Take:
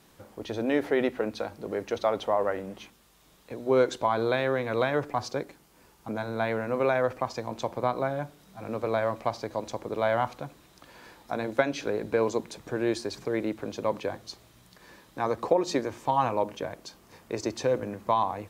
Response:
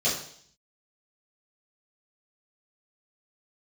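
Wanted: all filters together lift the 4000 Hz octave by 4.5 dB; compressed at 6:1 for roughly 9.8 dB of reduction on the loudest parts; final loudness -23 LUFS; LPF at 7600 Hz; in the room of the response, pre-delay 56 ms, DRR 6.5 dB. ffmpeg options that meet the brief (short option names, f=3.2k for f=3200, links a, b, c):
-filter_complex "[0:a]lowpass=7.6k,equalizer=f=4k:t=o:g=5.5,acompressor=threshold=-28dB:ratio=6,asplit=2[a][b];[1:a]atrim=start_sample=2205,adelay=56[c];[b][c]afir=irnorm=-1:irlink=0,volume=-18dB[d];[a][d]amix=inputs=2:normalize=0,volume=10.5dB"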